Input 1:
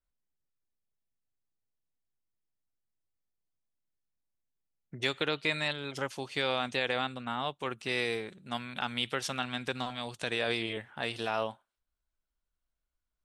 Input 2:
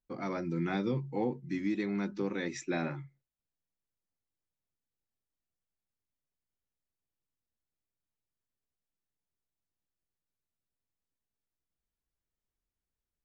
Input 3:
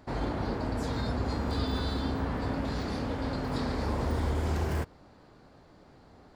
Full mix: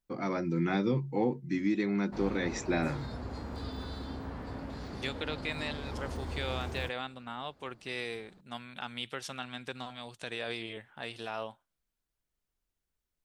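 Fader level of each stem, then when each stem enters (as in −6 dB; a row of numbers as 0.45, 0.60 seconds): −6.0, +3.0, −9.0 decibels; 0.00, 0.00, 2.05 seconds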